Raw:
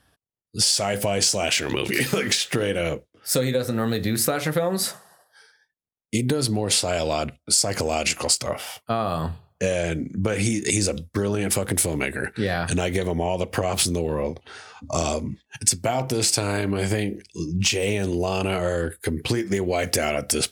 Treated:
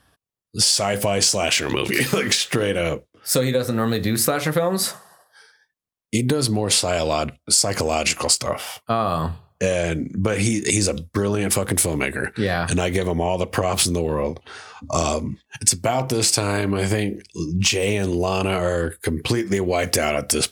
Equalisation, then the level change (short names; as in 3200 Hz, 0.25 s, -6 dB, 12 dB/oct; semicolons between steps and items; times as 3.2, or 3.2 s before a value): bell 1100 Hz +4.5 dB 0.29 oct; +2.5 dB